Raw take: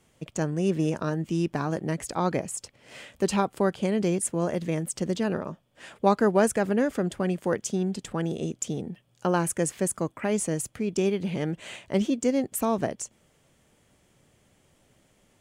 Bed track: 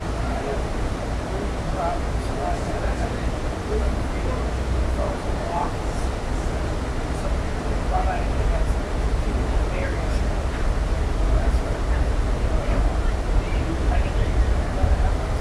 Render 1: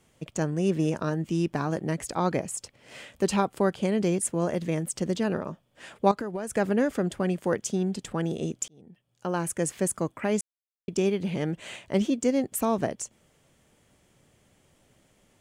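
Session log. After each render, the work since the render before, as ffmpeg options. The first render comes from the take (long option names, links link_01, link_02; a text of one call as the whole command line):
ffmpeg -i in.wav -filter_complex "[0:a]asettb=1/sr,asplit=3[link_01][link_02][link_03];[link_01]atrim=end=6.114[link_04];[link_02]atrim=start=6.11:end=6.56,asetpts=PTS-STARTPTS,afade=type=in:duration=0.004:curve=qsin,afade=type=out:start_time=0.446:duration=0.004:curve=qsin,acompressor=threshold=-28dB:ratio=10:attack=3.2:release=140:knee=1:detection=peak[link_05];[link_03]atrim=start=6.556[link_06];[link_04][link_05]acrossfade=duration=0.004:curve1=hsin:curve2=qsin[link_07];[link_07][link_06]acrossfade=duration=0.004:curve1=qsin:curve2=hsin,asplit=4[link_08][link_09][link_10][link_11];[link_08]atrim=end=8.68,asetpts=PTS-STARTPTS,afade=type=out:start_time=8.676:duration=0.004:curve=hsin[link_12];[link_09]atrim=start=8.68:end=10.41,asetpts=PTS-STARTPTS,afade=type=in:duration=1.11,afade=type=out:start_time=1.726:duration=0.004:curve=hsin[link_13];[link_10]atrim=start=10.41:end=10.88,asetpts=PTS-STARTPTS,volume=0[link_14];[link_11]atrim=start=10.88,asetpts=PTS-STARTPTS,afade=type=in:duration=0.004:curve=hsin[link_15];[link_12][link_13][link_14][link_15]concat=n=4:v=0:a=1" out.wav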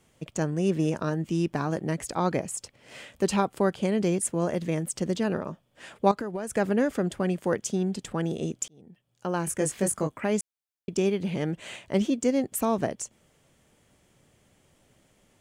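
ffmpeg -i in.wav -filter_complex "[0:a]asettb=1/sr,asplit=3[link_01][link_02][link_03];[link_01]atrim=end=9.454[link_04];[link_02]atrim=start=9.45:end=10.19,asetpts=PTS-STARTPTS,afade=type=in:duration=0.004:curve=qsin,afade=type=out:start_time=0.736:duration=0.004:curve=qsin,asplit=2[link_05][link_06];[link_06]adelay=20,volume=-4.5dB[link_07];[link_05][link_07]amix=inputs=2:normalize=0,atrim=end_sample=32634[link_08];[link_03]atrim=start=10.186[link_09];[link_04][link_08]acrossfade=duration=0.004:curve1=hsin:curve2=qsin[link_10];[link_10][link_09]acrossfade=duration=0.004:curve1=qsin:curve2=hsin" out.wav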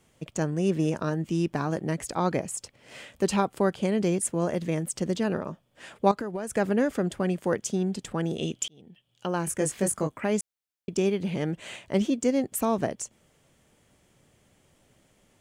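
ffmpeg -i in.wav -filter_complex "[0:a]asettb=1/sr,asplit=3[link_01][link_02][link_03];[link_01]atrim=end=8.384[link_04];[link_02]atrim=start=8.38:end=9.26,asetpts=PTS-STARTPTS,afade=type=in:duration=0.004:curve=qsin,afade=type=out:start_time=0.876:duration=0.004:curve=qsin,equalizer=frequency=3100:width_type=o:width=0.58:gain=14[link_05];[link_03]atrim=start=9.256[link_06];[link_04][link_05]acrossfade=duration=0.004:curve1=hsin:curve2=qsin[link_07];[link_07][link_06]acrossfade=duration=0.004:curve1=qsin:curve2=hsin" out.wav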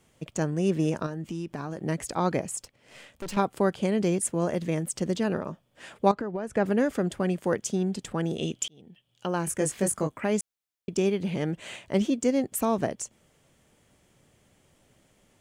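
ffmpeg -i in.wav -filter_complex "[0:a]asettb=1/sr,asplit=3[link_01][link_02][link_03];[link_01]atrim=end=1.064[link_04];[link_02]atrim=start=1.06:end=1.84,asetpts=PTS-STARTPTS,afade=type=in:duration=0.004:curve=qsin,afade=type=out:start_time=0.776:duration=0.004:curve=qsin,acompressor=threshold=-30dB:ratio=6:attack=3.2:release=140:knee=1:detection=peak[link_05];[link_03]atrim=start=1.836[link_06];[link_04][link_05]acrossfade=duration=0.004:curve1=hsin:curve2=qsin[link_07];[link_07][link_06]acrossfade=duration=0.004:curve1=qsin:curve2=hsin,asettb=1/sr,asplit=3[link_08][link_09][link_10];[link_08]atrim=end=2.624[link_11];[link_09]atrim=start=2.62:end=3.37,asetpts=PTS-STARTPTS,afade=type=in:duration=0.004:curve=qsin,afade=type=out:start_time=0.746:duration=0.004:curve=qsin,aeval=exprs='(tanh(44.7*val(0)+0.8)-tanh(0.8))/44.7':channel_layout=same[link_12];[link_10]atrim=start=3.366[link_13];[link_11][link_12]acrossfade=duration=0.004:curve1=hsin:curve2=qsin[link_14];[link_14][link_13]acrossfade=duration=0.004:curve1=qsin:curve2=hsin,asettb=1/sr,asplit=3[link_15][link_16][link_17];[link_15]atrim=end=6.124[link_18];[link_16]atrim=start=6.12:end=6.66,asetpts=PTS-STARTPTS,afade=type=in:duration=0.004:curve=qsin,afade=type=out:start_time=0.536:duration=0.004:curve=qsin,aemphasis=mode=reproduction:type=75fm[link_19];[link_17]atrim=start=6.656[link_20];[link_18][link_19]acrossfade=duration=0.004:curve1=hsin:curve2=qsin[link_21];[link_21][link_20]acrossfade=duration=0.004:curve1=qsin:curve2=hsin" out.wav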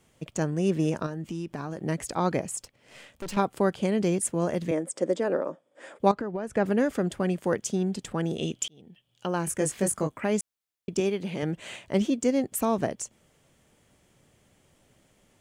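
ffmpeg -i in.wav -filter_complex "[0:a]asettb=1/sr,asplit=3[link_01][link_02][link_03];[link_01]atrim=end=4.714[link_04];[link_02]atrim=start=4.71:end=6,asetpts=PTS-STARTPTS,afade=type=in:duration=0.004:curve=qsin,afade=type=out:start_time=1.286:duration=0.004:curve=qsin,highpass=frequency=210:width=0.5412,highpass=frequency=210:width=1.3066,equalizer=frequency=210:width_type=q:width=4:gain=-7,equalizer=frequency=300:width_type=q:width=4:gain=4,equalizer=frequency=540:width_type=q:width=4:gain=10,equalizer=frequency=2800:width_type=q:width=4:gain=-9,equalizer=frequency=4200:width_type=q:width=4:gain=-9,equalizer=frequency=6000:width_type=q:width=4:gain=-7,lowpass=frequency=9200:width=0.5412,lowpass=frequency=9200:width=1.3066[link_05];[link_03]atrim=start=5.996[link_06];[link_04][link_05]acrossfade=duration=0.004:curve1=hsin:curve2=qsin[link_07];[link_07][link_06]acrossfade=duration=0.004:curve1=qsin:curve2=hsin,asettb=1/sr,asplit=3[link_08][link_09][link_10];[link_08]atrim=end=11.004[link_11];[link_09]atrim=start=11:end=11.43,asetpts=PTS-STARTPTS,afade=type=in:duration=0.004:curve=qsin,afade=type=out:start_time=0.426:duration=0.004:curve=qsin,highpass=frequency=230:poles=1[link_12];[link_10]atrim=start=11.426[link_13];[link_11][link_12]acrossfade=duration=0.004:curve1=hsin:curve2=qsin[link_14];[link_14][link_13]acrossfade=duration=0.004:curve1=qsin:curve2=hsin" out.wav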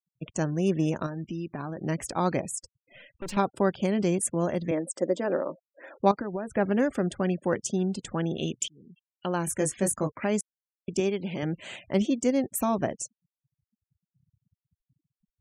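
ffmpeg -i in.wav -af "bandreject=frequency=450:width=12,afftfilt=real='re*gte(hypot(re,im),0.00562)':imag='im*gte(hypot(re,im),0.00562)':win_size=1024:overlap=0.75" out.wav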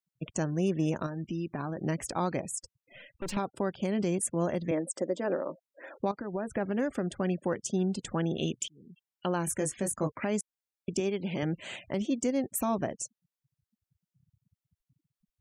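ffmpeg -i in.wav -af "alimiter=limit=-19.5dB:level=0:latency=1:release=329" out.wav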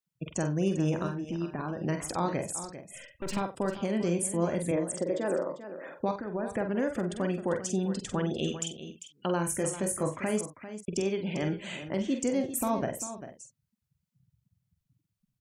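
ffmpeg -i in.wav -filter_complex "[0:a]asplit=2[link_01][link_02];[link_02]adelay=47,volume=-8dB[link_03];[link_01][link_03]amix=inputs=2:normalize=0,aecho=1:1:45|396:0.282|0.251" out.wav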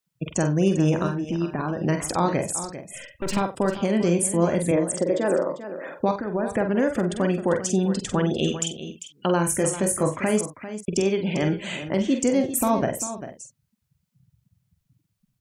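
ffmpeg -i in.wav -af "volume=7.5dB" out.wav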